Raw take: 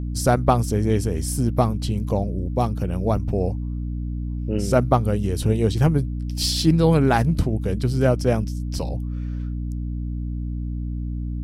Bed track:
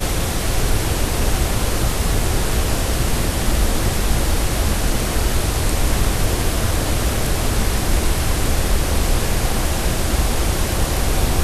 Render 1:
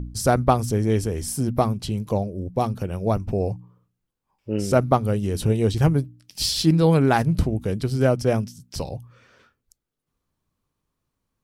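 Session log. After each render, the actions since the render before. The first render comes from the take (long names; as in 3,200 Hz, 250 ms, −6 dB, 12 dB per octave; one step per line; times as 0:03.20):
hum removal 60 Hz, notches 5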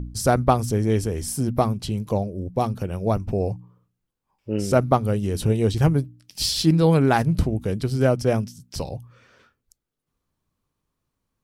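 no processing that can be heard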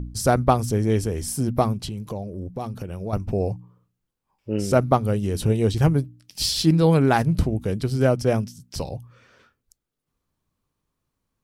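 0:01.85–0:03.13: downward compressor 3 to 1, threshold −28 dBFS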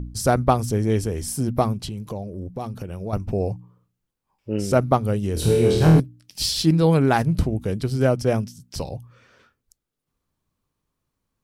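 0:05.34–0:06.00: flutter between parallel walls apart 4.3 metres, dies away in 0.81 s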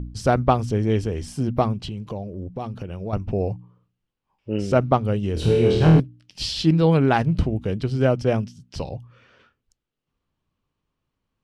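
Bessel low-pass filter 3,900 Hz, order 2
parametric band 2,900 Hz +6 dB 0.39 octaves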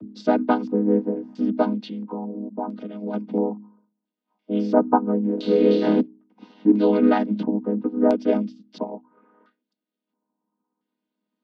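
channel vocoder with a chord as carrier minor triad, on G#3
auto-filter low-pass square 0.74 Hz 980–4,300 Hz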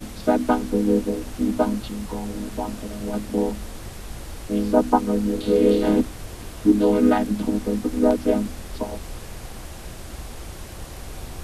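mix in bed track −17.5 dB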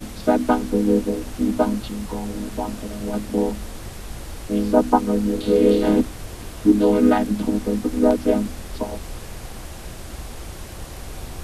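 level +1.5 dB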